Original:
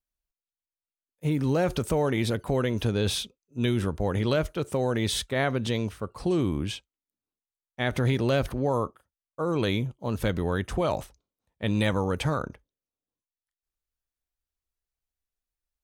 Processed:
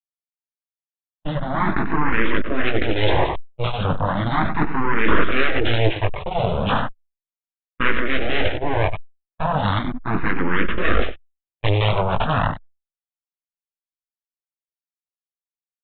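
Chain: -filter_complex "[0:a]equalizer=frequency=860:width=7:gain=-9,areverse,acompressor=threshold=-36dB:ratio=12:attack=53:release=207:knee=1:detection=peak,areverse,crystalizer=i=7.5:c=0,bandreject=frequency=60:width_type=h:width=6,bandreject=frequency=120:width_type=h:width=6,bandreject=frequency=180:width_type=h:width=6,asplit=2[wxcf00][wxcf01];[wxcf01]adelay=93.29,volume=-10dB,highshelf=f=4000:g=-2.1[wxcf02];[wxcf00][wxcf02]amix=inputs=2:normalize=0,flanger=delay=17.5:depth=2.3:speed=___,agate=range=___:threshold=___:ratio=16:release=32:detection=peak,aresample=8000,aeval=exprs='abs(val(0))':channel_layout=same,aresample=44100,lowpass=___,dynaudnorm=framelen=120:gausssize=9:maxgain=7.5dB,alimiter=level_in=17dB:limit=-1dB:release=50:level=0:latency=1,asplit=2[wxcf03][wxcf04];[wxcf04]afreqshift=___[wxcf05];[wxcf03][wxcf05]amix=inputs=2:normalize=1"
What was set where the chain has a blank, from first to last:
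1.4, -49dB, -46dB, 2200, 0.36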